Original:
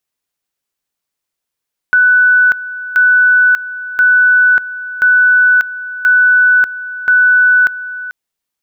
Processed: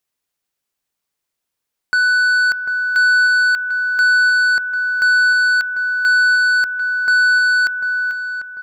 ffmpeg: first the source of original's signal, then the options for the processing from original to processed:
-f lavfi -i "aevalsrc='pow(10,(-5.5-15.5*gte(mod(t,1.03),0.59))/20)*sin(2*PI*1490*t)':d=6.18:s=44100"
-filter_complex "[0:a]asoftclip=type=tanh:threshold=0.237,asplit=2[s0][s1];[s1]adelay=745,lowpass=f=1400:p=1,volume=0.473,asplit=2[s2][s3];[s3]adelay=745,lowpass=f=1400:p=1,volume=0.51,asplit=2[s4][s5];[s5]adelay=745,lowpass=f=1400:p=1,volume=0.51,asplit=2[s6][s7];[s7]adelay=745,lowpass=f=1400:p=1,volume=0.51,asplit=2[s8][s9];[s9]adelay=745,lowpass=f=1400:p=1,volume=0.51,asplit=2[s10][s11];[s11]adelay=745,lowpass=f=1400:p=1,volume=0.51[s12];[s2][s4][s6][s8][s10][s12]amix=inputs=6:normalize=0[s13];[s0][s13]amix=inputs=2:normalize=0"

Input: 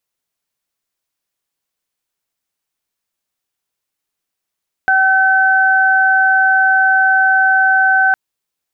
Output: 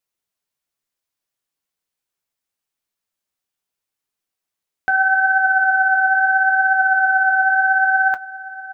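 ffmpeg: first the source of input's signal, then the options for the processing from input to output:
-f lavfi -i "aevalsrc='0.2*sin(2*PI*764*t)+0.316*sin(2*PI*1528*t)':d=3.26:s=44100"
-filter_complex "[0:a]flanger=delay=7.4:depth=7.4:regen=57:speed=0.74:shape=triangular,asplit=2[s0][s1];[s1]adelay=758,volume=0.178,highshelf=f=4000:g=-17.1[s2];[s0][s2]amix=inputs=2:normalize=0"

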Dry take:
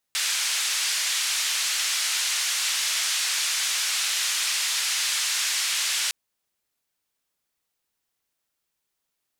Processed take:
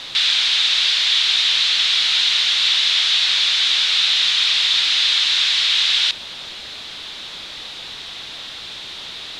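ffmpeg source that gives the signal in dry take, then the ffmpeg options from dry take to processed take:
-f lavfi -i "anoisesrc=c=white:d=5.96:r=44100:seed=1,highpass=f=1800,lowpass=f=7300,volume=-14.8dB"
-af "aeval=exprs='val(0)+0.5*0.0422*sgn(val(0))':c=same,lowpass=f=3700:t=q:w=4.9"

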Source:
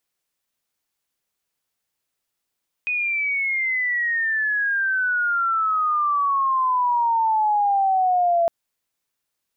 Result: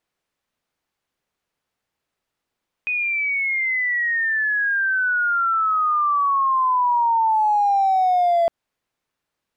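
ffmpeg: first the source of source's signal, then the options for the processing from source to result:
-f lavfi -i "aevalsrc='pow(10,(-20.5+5*t/5.61)/20)*sin(2*PI*2500*5.61/log(670/2500)*(exp(log(670/2500)*t/5.61)-1))':d=5.61:s=44100"
-filter_complex "[0:a]lowpass=f=1900:p=1,asplit=2[s0][s1];[s1]alimiter=level_in=1.5:limit=0.0631:level=0:latency=1:release=107,volume=0.668,volume=1.06[s2];[s0][s2]amix=inputs=2:normalize=0,asoftclip=type=hard:threshold=0.178"

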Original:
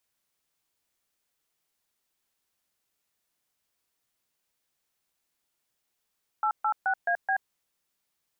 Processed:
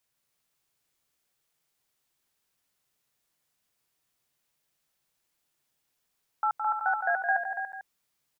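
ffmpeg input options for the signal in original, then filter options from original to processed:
-f lavfi -i "aevalsrc='0.0531*clip(min(mod(t,0.214),0.08-mod(t,0.214))/0.002,0,1)*(eq(floor(t/0.214),0)*(sin(2*PI*852*mod(t,0.214))+sin(2*PI*1336*mod(t,0.214)))+eq(floor(t/0.214),1)*(sin(2*PI*852*mod(t,0.214))+sin(2*PI*1336*mod(t,0.214)))+eq(floor(t/0.214),2)*(sin(2*PI*770*mod(t,0.214))+sin(2*PI*1477*mod(t,0.214)))+eq(floor(t/0.214),3)*(sin(2*PI*697*mod(t,0.214))+sin(2*PI*1633*mod(t,0.214)))+eq(floor(t/0.214),4)*(sin(2*PI*770*mod(t,0.214))+sin(2*PI*1633*mod(t,0.214))))':d=1.07:s=44100"
-af "equalizer=f=140:w=4.2:g=6.5,aecho=1:1:165|285|356|445:0.473|0.447|0.133|0.188"

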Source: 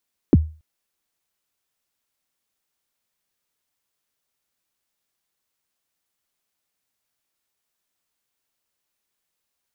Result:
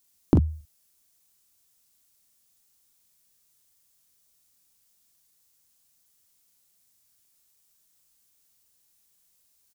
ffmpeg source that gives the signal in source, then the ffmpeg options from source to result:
-f lavfi -i "aevalsrc='0.531*pow(10,-3*t/0.34)*sin(2*PI*(390*0.032/log(78/390)*(exp(log(78/390)*min(t,0.032)/0.032)-1)+78*max(t-0.032,0)))':d=0.28:s=44100"
-af "bass=f=250:g=9,treble=f=4000:g=13,acompressor=threshold=0.158:ratio=12,aecho=1:1:24|42:0.168|0.501"

